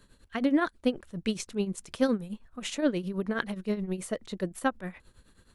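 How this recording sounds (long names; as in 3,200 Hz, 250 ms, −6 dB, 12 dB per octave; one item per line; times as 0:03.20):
tremolo triangle 9.5 Hz, depth 80%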